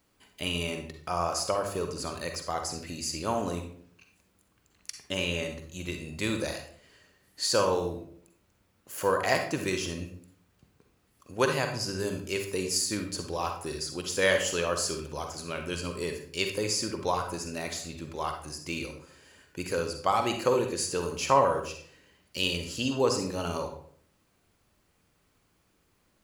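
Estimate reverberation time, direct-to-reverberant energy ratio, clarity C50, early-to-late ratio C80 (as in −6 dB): 0.55 s, 4.5 dB, 6.0 dB, 10.5 dB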